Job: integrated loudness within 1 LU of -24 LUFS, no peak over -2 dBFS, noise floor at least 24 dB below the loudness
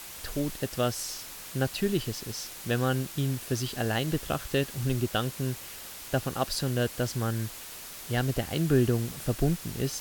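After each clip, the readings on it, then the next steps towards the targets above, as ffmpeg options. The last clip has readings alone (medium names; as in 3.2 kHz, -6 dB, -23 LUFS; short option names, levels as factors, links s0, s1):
noise floor -43 dBFS; noise floor target -54 dBFS; loudness -30.0 LUFS; peak level -11.0 dBFS; loudness target -24.0 LUFS
-> -af "afftdn=nr=11:nf=-43"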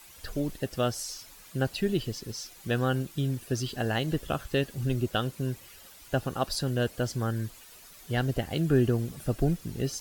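noise floor -51 dBFS; noise floor target -55 dBFS
-> -af "afftdn=nr=6:nf=-51"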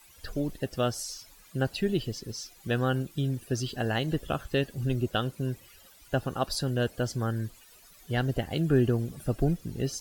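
noise floor -56 dBFS; loudness -30.5 LUFS; peak level -11.5 dBFS; loudness target -24.0 LUFS
-> -af "volume=2.11"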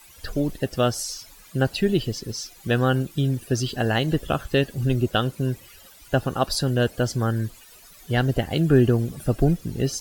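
loudness -24.0 LUFS; peak level -5.0 dBFS; noise floor -49 dBFS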